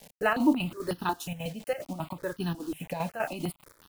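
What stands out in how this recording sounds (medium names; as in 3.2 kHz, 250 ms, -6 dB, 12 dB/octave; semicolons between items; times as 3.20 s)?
a quantiser's noise floor 8-bit, dither none; chopped level 5 Hz, depth 60%, duty 65%; notches that jump at a steady rate 5.5 Hz 340–2200 Hz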